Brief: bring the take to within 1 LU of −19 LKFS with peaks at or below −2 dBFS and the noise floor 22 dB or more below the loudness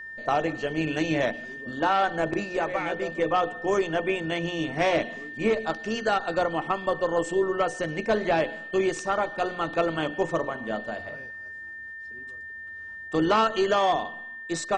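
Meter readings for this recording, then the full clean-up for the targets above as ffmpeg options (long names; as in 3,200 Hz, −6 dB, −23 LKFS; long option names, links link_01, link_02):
interfering tone 1,800 Hz; level of the tone −37 dBFS; integrated loudness −26.5 LKFS; sample peak −13.0 dBFS; target loudness −19.0 LKFS
→ -af "bandreject=frequency=1800:width=30"
-af "volume=7.5dB"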